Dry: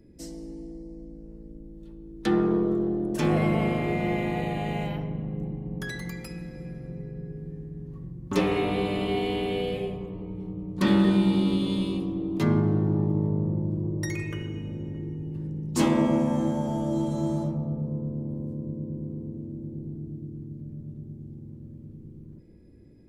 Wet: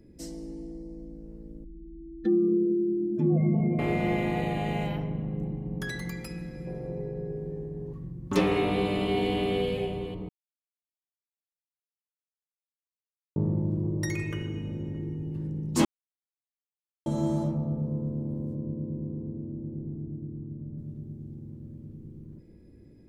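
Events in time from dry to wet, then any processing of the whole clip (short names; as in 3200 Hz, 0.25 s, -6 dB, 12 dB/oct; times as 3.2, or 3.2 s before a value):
1.64–3.79 spectral contrast raised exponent 2.4
6.67–7.93 band shelf 610 Hz +10 dB
8.68–9.64 echo throw 0.5 s, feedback 15%, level -12 dB
10.29–13.36 mute
15.85–17.06 mute
18.55–20.78 steep low-pass 1300 Hz 96 dB/oct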